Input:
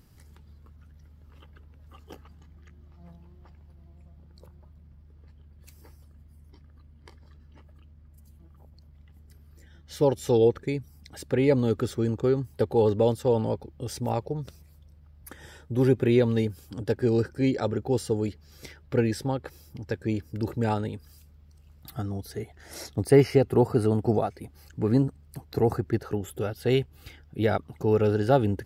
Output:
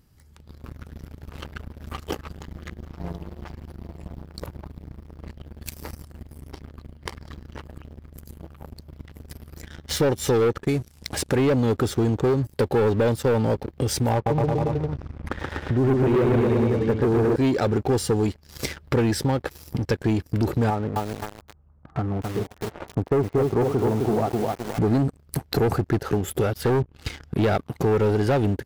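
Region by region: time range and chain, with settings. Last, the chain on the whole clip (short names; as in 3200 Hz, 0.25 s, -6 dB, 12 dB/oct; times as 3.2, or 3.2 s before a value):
10.67–11.36 CVSD 64 kbps + core saturation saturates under 360 Hz
14.13–17.36 LPF 2000 Hz + bouncing-ball echo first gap 0.13 s, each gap 0.9×, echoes 5, each echo -2 dB
20.7–24.79 ladder low-pass 1400 Hz, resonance 35% + lo-fi delay 0.259 s, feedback 35%, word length 8-bit, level -4 dB
26.64–27.43 treble ducked by the level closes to 570 Hz, closed at -19 dBFS + hard clip -25 dBFS
whole clip: AGC gain up to 7.5 dB; sample leveller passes 3; compressor 2.5:1, threshold -30 dBFS; gain +3 dB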